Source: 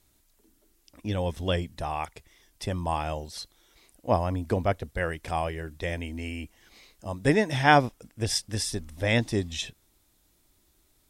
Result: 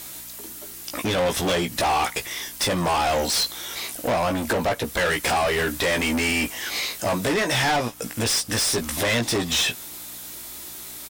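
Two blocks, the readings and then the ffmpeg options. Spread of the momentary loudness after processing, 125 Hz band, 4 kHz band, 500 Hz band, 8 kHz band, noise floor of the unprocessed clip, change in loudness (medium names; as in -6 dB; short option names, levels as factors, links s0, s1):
13 LU, -1.0 dB, +11.0 dB, +5.0 dB, +12.5 dB, -67 dBFS, +5.5 dB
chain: -filter_complex "[0:a]highshelf=f=9500:g=12,acompressor=threshold=0.0224:ratio=5,asoftclip=type=hard:threshold=0.0178,aeval=exprs='val(0)+0.000355*(sin(2*PI*60*n/s)+sin(2*PI*2*60*n/s)/2+sin(2*PI*3*60*n/s)/3+sin(2*PI*4*60*n/s)/4+sin(2*PI*5*60*n/s)/5)':c=same,asplit=2[s0][s1];[s1]adelay=17,volume=0.447[s2];[s0][s2]amix=inputs=2:normalize=0,asplit=2[s3][s4];[s4]highpass=f=720:p=1,volume=22.4,asoftclip=type=tanh:threshold=0.0891[s5];[s3][s5]amix=inputs=2:normalize=0,lowpass=f=6700:p=1,volume=0.501,volume=2.37"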